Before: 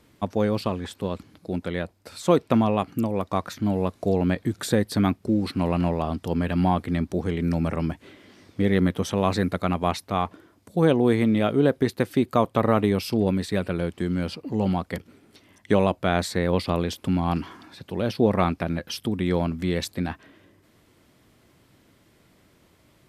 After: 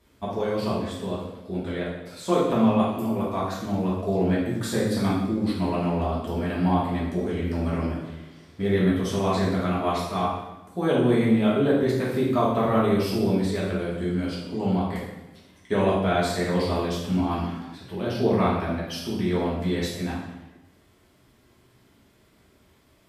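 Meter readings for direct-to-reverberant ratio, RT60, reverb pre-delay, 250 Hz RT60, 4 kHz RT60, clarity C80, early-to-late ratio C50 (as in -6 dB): -8.0 dB, 1.0 s, 3 ms, 1.1 s, 0.85 s, 4.5 dB, 1.0 dB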